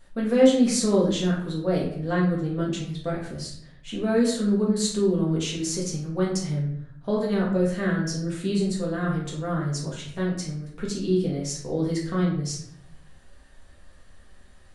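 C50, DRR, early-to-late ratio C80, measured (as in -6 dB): 4.0 dB, -5.0 dB, 8.0 dB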